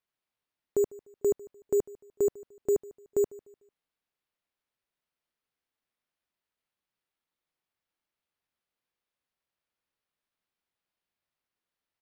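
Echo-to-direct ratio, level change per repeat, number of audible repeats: -21.0 dB, -9.0 dB, 2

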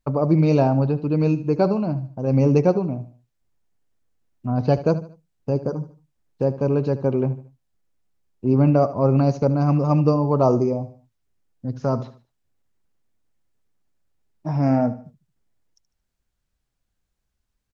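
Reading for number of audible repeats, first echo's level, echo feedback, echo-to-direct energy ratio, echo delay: 3, -15.0 dB, 36%, -14.5 dB, 75 ms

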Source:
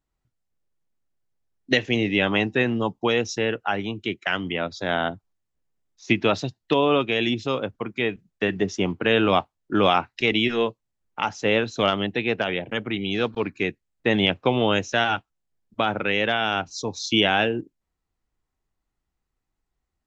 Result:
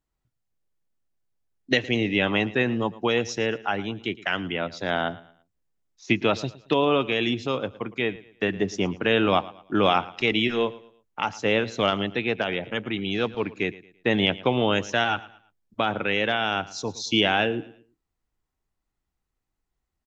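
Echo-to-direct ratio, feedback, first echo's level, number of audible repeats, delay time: -18.5 dB, 34%, -19.0 dB, 2, 0.112 s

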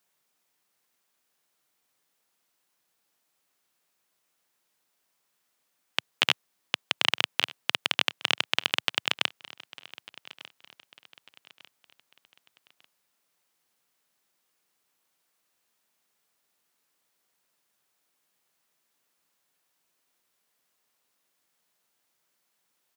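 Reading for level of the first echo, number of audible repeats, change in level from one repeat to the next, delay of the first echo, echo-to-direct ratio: -20.5 dB, 2, -8.0 dB, 1.197 s, -20.0 dB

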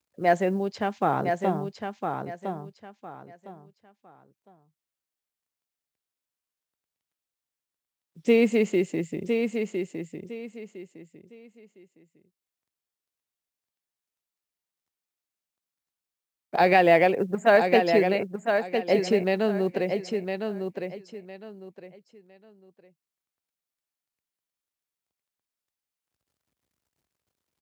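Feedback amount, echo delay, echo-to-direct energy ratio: 25%, 1.008 s, -5.5 dB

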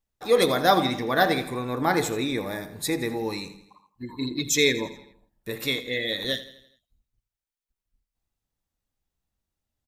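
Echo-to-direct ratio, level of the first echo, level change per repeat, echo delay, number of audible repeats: -14.0 dB, -15.0 dB, -6.0 dB, 83 ms, 4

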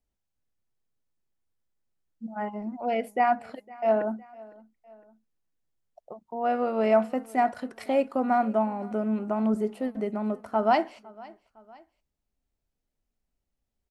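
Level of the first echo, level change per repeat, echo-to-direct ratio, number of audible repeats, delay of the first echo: -22.5 dB, -6.0 dB, -21.5 dB, 2, 0.508 s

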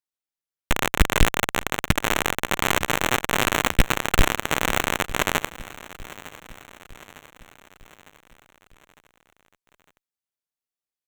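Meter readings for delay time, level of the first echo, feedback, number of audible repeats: 0.905 s, -18.0 dB, 54%, 4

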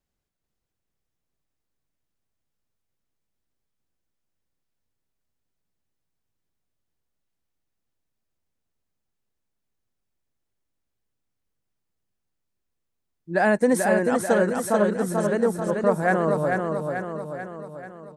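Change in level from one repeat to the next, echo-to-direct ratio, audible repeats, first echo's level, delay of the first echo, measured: -5.0 dB, -2.5 dB, 6, -4.0 dB, 0.438 s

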